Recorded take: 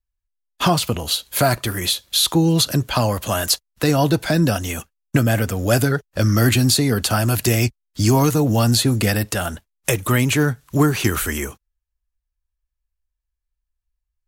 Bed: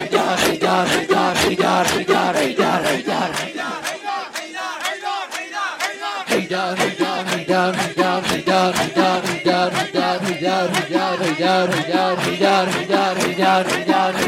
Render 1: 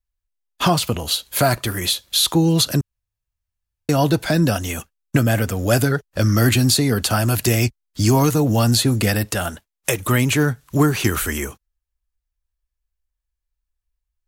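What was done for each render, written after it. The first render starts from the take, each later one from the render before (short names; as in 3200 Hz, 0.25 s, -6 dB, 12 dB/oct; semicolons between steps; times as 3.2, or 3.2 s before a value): 2.81–3.89 room tone; 9.5–10 low shelf 190 Hz -7 dB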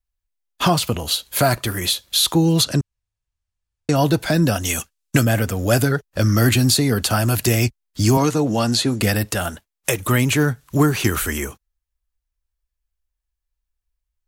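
2.64–3.96 LPF 9300 Hz 24 dB/oct; 4.65–5.25 bell 6800 Hz +9 dB 2.8 oct; 8.17–9.01 BPF 170–7800 Hz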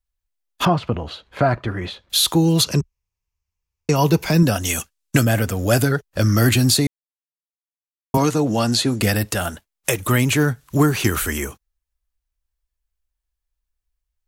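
0.65–2.1 LPF 1800 Hz; 2.64–4.43 ripple EQ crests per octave 0.79, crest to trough 8 dB; 6.87–8.14 mute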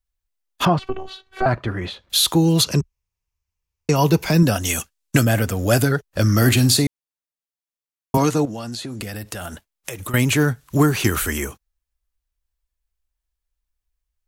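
0.79–1.46 robotiser 379 Hz; 6.37–6.84 flutter echo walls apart 8.3 m, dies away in 0.21 s; 8.45–10.14 compressor 16:1, threshold -26 dBFS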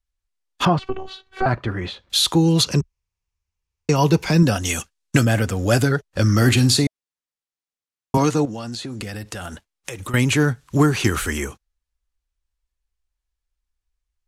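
LPF 8800 Hz 12 dB/oct; notch 640 Hz, Q 12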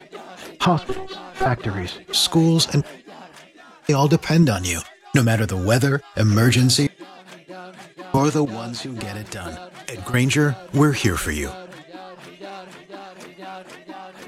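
add bed -21 dB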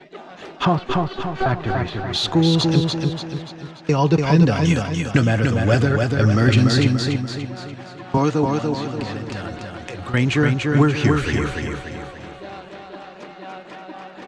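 air absorption 130 m; on a send: feedback echo 0.29 s, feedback 46%, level -3.5 dB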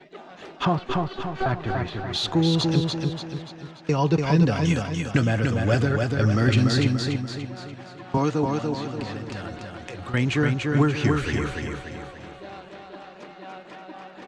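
gain -4.5 dB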